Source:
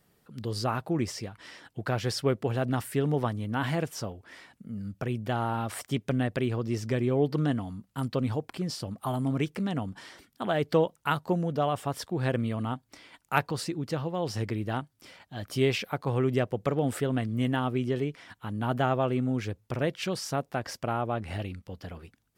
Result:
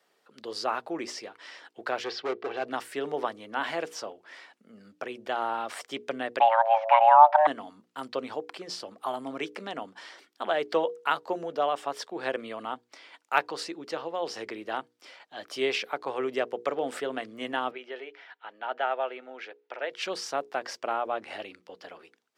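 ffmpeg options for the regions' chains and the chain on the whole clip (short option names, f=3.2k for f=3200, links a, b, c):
-filter_complex "[0:a]asettb=1/sr,asplit=3[a][b][c];[a]atrim=end=2.044[d];[b]atrim=start=2.04:end=2.66,asetpts=PTS-STARTPTS,afade=t=in:d=0.004:c=qsin,afade=t=out:st=0.616:d=0.004:c=qsin,lowpass=f=4.5k:w=0.5412,lowpass=f=4.5k:w=1.3066,aecho=1:1:2.6:0.36,atrim=end_sample=27342,asoftclip=type=hard:threshold=-24.5dB[e];[c]atrim=start=2.656[f];[d][e]acrossfade=d=0.004:c1=hsin:c2=qsin[g];[g][f]acrossfade=d=0.004:c1=qsin:c2=hsin,asettb=1/sr,asplit=3[h][i][j];[h]atrim=end=6.404[k];[i]atrim=start=6.4:end=7.47,asetpts=PTS-STARTPTS,afade=t=in:d=0.004:c=qsin,afade=t=out:st=1.066:d=0.004:c=qsin,lowpass=f=2.7k:w=0.5412,lowpass=f=2.7k:w=1.3066,equalizer=f=690:w=0.37:g=11,afreqshift=450[l];[j]atrim=start=7.466[m];[k][l]acrossfade=d=0.004:c1=hsin:c2=qsin[n];[n][m]acrossfade=d=0.004:c1=qsin:c2=hsin,asettb=1/sr,asplit=3[o][p][q];[o]atrim=end=17.714[r];[p]atrim=start=17.71:end=19.91,asetpts=PTS-STARTPTS,afade=t=in:d=0.004:c=qsin,afade=t=out:st=2.196:d=0.004:c=qsin,highpass=610,lowpass=3k,bandreject=f=1.1k:w=5.1[s];[q]atrim=start=19.906[t];[r][s]acrossfade=d=0.004:c1=hsin:c2=qsin[u];[u][t]acrossfade=d=0.004:c1=qsin:c2=hsin,highpass=180,acrossover=split=340 7100:gain=0.0631 1 0.2[v][w][x];[v][w][x]amix=inputs=3:normalize=0,bandreject=f=60:t=h:w=6,bandreject=f=120:t=h:w=6,bandreject=f=180:t=h:w=6,bandreject=f=240:t=h:w=6,bandreject=f=300:t=h:w=6,bandreject=f=360:t=h:w=6,bandreject=f=420:t=h:w=6,bandreject=f=480:t=h:w=6,volume=2dB"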